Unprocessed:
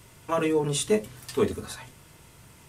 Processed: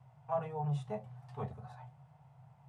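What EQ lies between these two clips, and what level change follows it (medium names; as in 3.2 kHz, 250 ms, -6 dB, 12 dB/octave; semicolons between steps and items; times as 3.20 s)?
two resonant band-passes 320 Hz, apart 2.5 oct; +2.5 dB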